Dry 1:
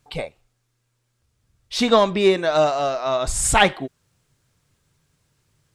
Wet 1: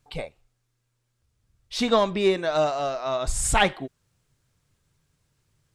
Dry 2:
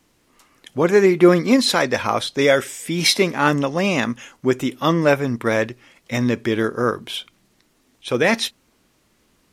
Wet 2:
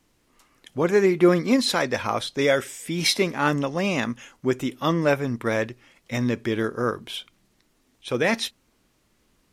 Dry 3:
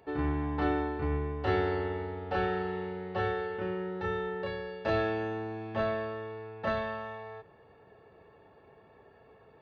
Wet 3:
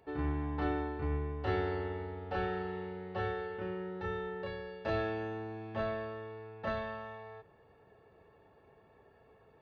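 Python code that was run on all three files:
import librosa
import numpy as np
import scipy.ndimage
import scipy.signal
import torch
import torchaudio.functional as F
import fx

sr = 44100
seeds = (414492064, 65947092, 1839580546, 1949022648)

y = fx.low_shelf(x, sr, hz=67.0, db=6.5)
y = y * 10.0 ** (-5.0 / 20.0)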